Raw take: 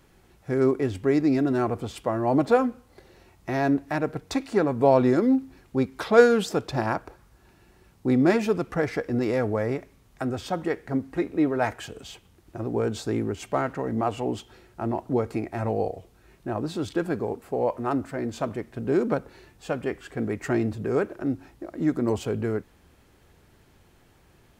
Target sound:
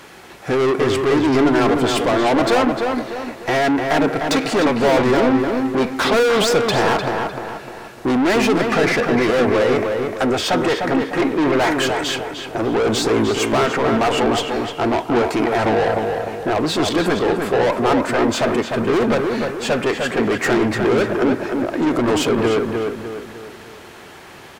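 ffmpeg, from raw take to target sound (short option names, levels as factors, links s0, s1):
-filter_complex "[0:a]asplit=2[s0][s1];[s1]highpass=f=720:p=1,volume=50.1,asoftclip=type=tanh:threshold=0.562[s2];[s0][s2]amix=inputs=2:normalize=0,lowpass=f=4900:p=1,volume=0.501,asplit=2[s3][s4];[s4]adelay=302,lowpass=f=2700:p=1,volume=0.631,asplit=2[s5][s6];[s6]adelay=302,lowpass=f=2700:p=1,volume=0.44,asplit=2[s7][s8];[s8]adelay=302,lowpass=f=2700:p=1,volume=0.44,asplit=2[s9][s10];[s10]adelay=302,lowpass=f=2700:p=1,volume=0.44,asplit=2[s11][s12];[s12]adelay=302,lowpass=f=2700:p=1,volume=0.44,asplit=2[s13][s14];[s14]adelay=302,lowpass=f=2700:p=1,volume=0.44[s15];[s3][s5][s7][s9][s11][s13][s15]amix=inputs=7:normalize=0,volume=0.596"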